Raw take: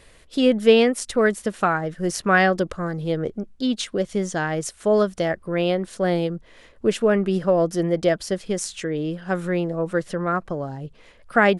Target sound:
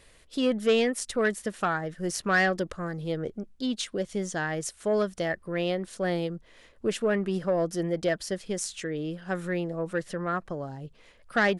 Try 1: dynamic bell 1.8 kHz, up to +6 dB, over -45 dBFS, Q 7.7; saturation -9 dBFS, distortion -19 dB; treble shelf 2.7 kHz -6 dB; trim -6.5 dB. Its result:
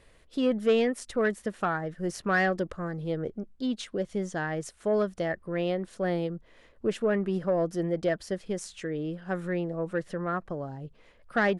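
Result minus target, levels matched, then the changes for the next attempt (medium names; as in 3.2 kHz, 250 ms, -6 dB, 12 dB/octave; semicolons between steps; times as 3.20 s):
4 kHz band -5.0 dB
change: treble shelf 2.7 kHz +3.5 dB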